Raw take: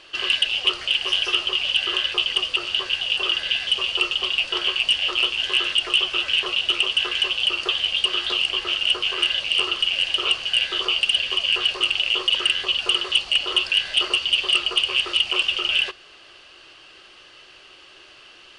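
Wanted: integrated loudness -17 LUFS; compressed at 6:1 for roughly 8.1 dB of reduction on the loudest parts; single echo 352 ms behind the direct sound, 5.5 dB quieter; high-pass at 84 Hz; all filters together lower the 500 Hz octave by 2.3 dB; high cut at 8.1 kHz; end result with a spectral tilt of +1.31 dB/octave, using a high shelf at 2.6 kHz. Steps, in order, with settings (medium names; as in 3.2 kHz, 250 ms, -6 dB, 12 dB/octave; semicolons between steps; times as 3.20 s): high-pass 84 Hz; low-pass 8.1 kHz; peaking EQ 500 Hz -3.5 dB; treble shelf 2.6 kHz +7.5 dB; compression 6:1, threshold -20 dBFS; delay 352 ms -5.5 dB; trim +4 dB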